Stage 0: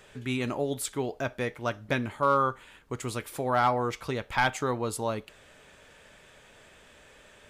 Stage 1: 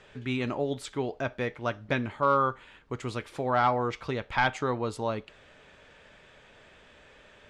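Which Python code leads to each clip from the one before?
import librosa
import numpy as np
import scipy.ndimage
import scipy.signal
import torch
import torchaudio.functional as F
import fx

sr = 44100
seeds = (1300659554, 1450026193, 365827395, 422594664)

y = scipy.signal.sosfilt(scipy.signal.butter(2, 4700.0, 'lowpass', fs=sr, output='sos'), x)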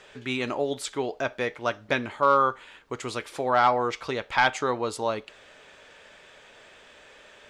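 y = fx.bass_treble(x, sr, bass_db=-10, treble_db=5)
y = y * librosa.db_to_amplitude(4.0)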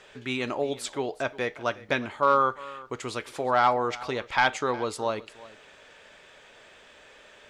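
y = x + 10.0 ** (-19.5 / 20.0) * np.pad(x, (int(360 * sr / 1000.0), 0))[:len(x)]
y = y * librosa.db_to_amplitude(-1.0)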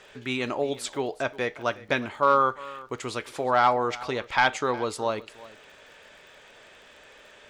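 y = fx.dmg_crackle(x, sr, seeds[0], per_s=38.0, level_db=-46.0)
y = y * librosa.db_to_amplitude(1.0)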